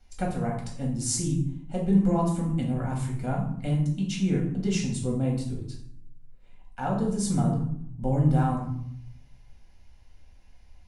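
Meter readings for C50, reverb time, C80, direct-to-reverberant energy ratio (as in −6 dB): 5.5 dB, 0.65 s, 9.0 dB, −2.5 dB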